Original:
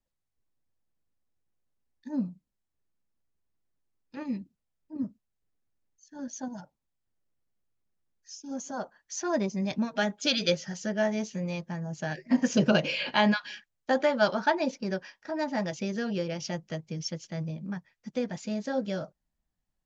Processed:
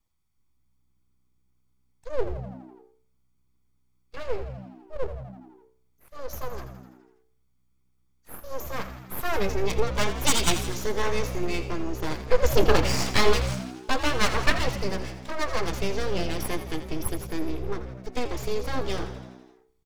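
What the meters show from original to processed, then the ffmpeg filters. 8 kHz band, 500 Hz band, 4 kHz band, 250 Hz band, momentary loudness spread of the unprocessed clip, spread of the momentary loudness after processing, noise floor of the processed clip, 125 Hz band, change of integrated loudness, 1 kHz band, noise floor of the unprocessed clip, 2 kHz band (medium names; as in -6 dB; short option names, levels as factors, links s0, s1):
no reading, +3.0 dB, +3.0 dB, -3.5 dB, 15 LU, 18 LU, -67 dBFS, +4.5 dB, +2.0 dB, +3.0 dB, -83 dBFS, +2.5 dB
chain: -filter_complex "[0:a]aecho=1:1:0.9:0.67,bandreject=f=93.12:t=h:w=4,bandreject=f=186.24:t=h:w=4,bandreject=f=279.36:t=h:w=4,bandreject=f=372.48:t=h:w=4,bandreject=f=465.6:t=h:w=4,bandreject=f=558.72:t=h:w=4,bandreject=f=651.84:t=h:w=4,bandreject=f=744.96:t=h:w=4,bandreject=f=838.08:t=h:w=4,bandreject=f=931.2:t=h:w=4,bandreject=f=1024.32:t=h:w=4,bandreject=f=1117.44:t=h:w=4,bandreject=f=1210.56:t=h:w=4,bandreject=f=1303.68:t=h:w=4,bandreject=f=1396.8:t=h:w=4,bandreject=f=1489.92:t=h:w=4,bandreject=f=1583.04:t=h:w=4,bandreject=f=1676.16:t=h:w=4,bandreject=f=1769.28:t=h:w=4,bandreject=f=1862.4:t=h:w=4,bandreject=f=1955.52:t=h:w=4,bandreject=f=2048.64:t=h:w=4,bandreject=f=2141.76:t=h:w=4,bandreject=f=2234.88:t=h:w=4,bandreject=f=2328:t=h:w=4,bandreject=f=2421.12:t=h:w=4,bandreject=f=2514.24:t=h:w=4,bandreject=f=2607.36:t=h:w=4,bandreject=f=2700.48:t=h:w=4,bandreject=f=2793.6:t=h:w=4,bandreject=f=2886.72:t=h:w=4,bandreject=f=2979.84:t=h:w=4,bandreject=f=3072.96:t=h:w=4,bandreject=f=3166.08:t=h:w=4,bandreject=f=3259.2:t=h:w=4,aeval=exprs='abs(val(0))':c=same,asplit=8[s0][s1][s2][s3][s4][s5][s6][s7];[s1]adelay=83,afreqshift=63,volume=0.251[s8];[s2]adelay=166,afreqshift=126,volume=0.158[s9];[s3]adelay=249,afreqshift=189,volume=0.1[s10];[s4]adelay=332,afreqshift=252,volume=0.0631[s11];[s5]adelay=415,afreqshift=315,volume=0.0394[s12];[s6]adelay=498,afreqshift=378,volume=0.0248[s13];[s7]adelay=581,afreqshift=441,volume=0.0157[s14];[s0][s8][s9][s10][s11][s12][s13][s14]amix=inputs=8:normalize=0,volume=1.88"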